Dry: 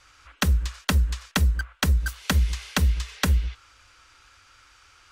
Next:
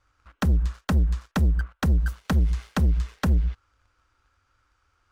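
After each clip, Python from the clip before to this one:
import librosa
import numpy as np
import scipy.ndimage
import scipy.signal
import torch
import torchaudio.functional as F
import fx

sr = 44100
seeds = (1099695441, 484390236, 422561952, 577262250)

y = fx.curve_eq(x, sr, hz=(140.0, 1400.0, 2500.0), db=(0, -7, -15))
y = fx.leveller(y, sr, passes=2)
y = F.gain(torch.from_numpy(y), -2.0).numpy()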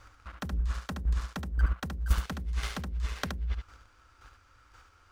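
y = fx.over_compress(x, sr, threshold_db=-31.0, ratio=-1.0)
y = fx.chopper(y, sr, hz=1.9, depth_pct=60, duty_pct=15)
y = y + 10.0 ** (-6.0 / 20.0) * np.pad(y, (int(72 * sr / 1000.0), 0))[:len(y)]
y = F.gain(torch.from_numpy(y), 5.0).numpy()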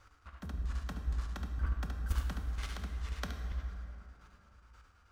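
y = fx.chopper(x, sr, hz=9.3, depth_pct=65, duty_pct=75)
y = fx.rev_plate(y, sr, seeds[0], rt60_s=3.2, hf_ratio=0.5, predelay_ms=0, drr_db=4.0)
y = F.gain(torch.from_numpy(y), -7.0).numpy()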